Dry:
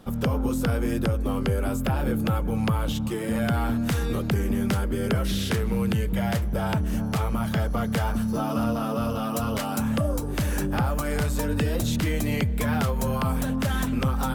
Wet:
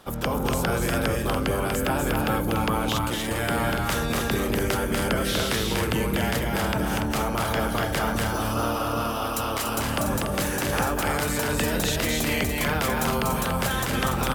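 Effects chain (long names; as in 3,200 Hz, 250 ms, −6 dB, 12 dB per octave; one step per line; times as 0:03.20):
ceiling on every frequency bin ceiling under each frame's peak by 16 dB
on a send: loudspeakers that aren't time-aligned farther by 83 metres −3 dB, 99 metres −7 dB
on the sum: level −2 dB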